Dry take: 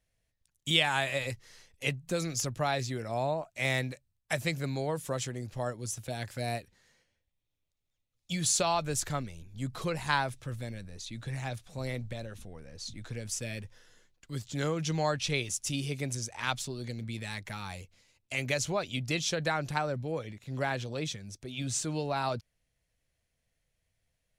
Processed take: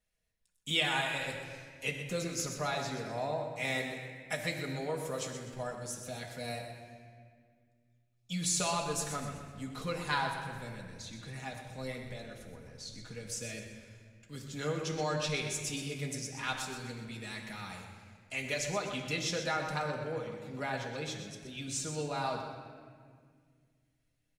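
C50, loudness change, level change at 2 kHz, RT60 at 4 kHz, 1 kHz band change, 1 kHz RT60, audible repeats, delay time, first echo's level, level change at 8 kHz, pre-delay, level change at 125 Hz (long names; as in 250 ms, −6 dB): 4.5 dB, −3.0 dB, −2.5 dB, 1.3 s, −2.5 dB, 1.7 s, 2, 125 ms, −8.5 dB, −3.0 dB, 4 ms, −6.0 dB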